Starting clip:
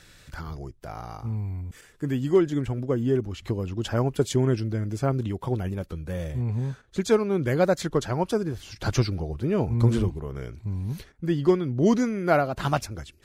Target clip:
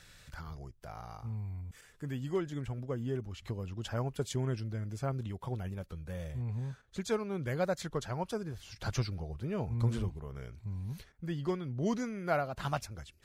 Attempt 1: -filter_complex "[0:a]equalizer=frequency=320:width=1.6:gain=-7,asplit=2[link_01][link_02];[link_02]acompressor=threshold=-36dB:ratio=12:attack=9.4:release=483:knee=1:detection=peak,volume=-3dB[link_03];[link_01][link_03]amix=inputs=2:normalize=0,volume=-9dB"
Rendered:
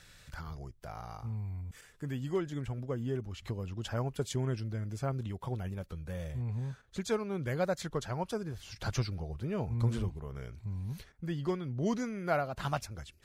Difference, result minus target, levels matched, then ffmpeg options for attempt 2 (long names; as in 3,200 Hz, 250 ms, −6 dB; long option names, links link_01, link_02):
downward compressor: peak gain reduction −8 dB
-filter_complex "[0:a]equalizer=frequency=320:width=1.6:gain=-7,asplit=2[link_01][link_02];[link_02]acompressor=threshold=-45dB:ratio=12:attack=9.4:release=483:knee=1:detection=peak,volume=-3dB[link_03];[link_01][link_03]amix=inputs=2:normalize=0,volume=-9dB"